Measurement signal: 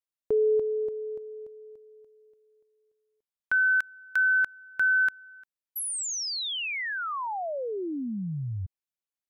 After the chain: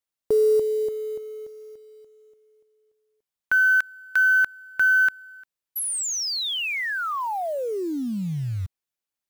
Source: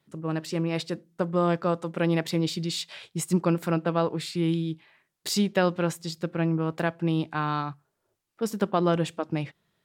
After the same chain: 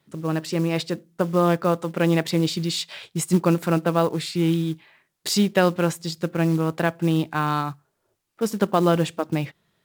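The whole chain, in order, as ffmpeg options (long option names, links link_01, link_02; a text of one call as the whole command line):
ffmpeg -i in.wav -af "acrusher=bits=6:mode=log:mix=0:aa=0.000001,volume=4.5dB" out.wav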